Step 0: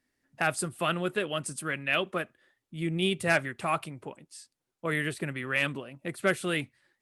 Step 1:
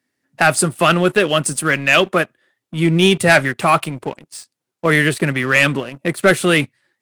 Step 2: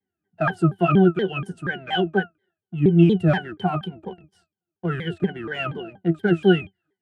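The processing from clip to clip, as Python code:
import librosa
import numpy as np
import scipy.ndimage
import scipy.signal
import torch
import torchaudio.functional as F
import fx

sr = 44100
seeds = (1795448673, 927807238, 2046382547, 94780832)

y1 = scipy.signal.sosfilt(scipy.signal.butter(4, 93.0, 'highpass', fs=sr, output='sos'), x)
y1 = fx.leveller(y1, sr, passes=2)
y1 = y1 * librosa.db_to_amplitude(8.5)
y2 = fx.octave_resonator(y1, sr, note='F', decay_s=0.12)
y2 = fx.vibrato_shape(y2, sr, shape='saw_down', rate_hz=4.2, depth_cents=250.0)
y2 = y2 * librosa.db_to_amplitude(3.5)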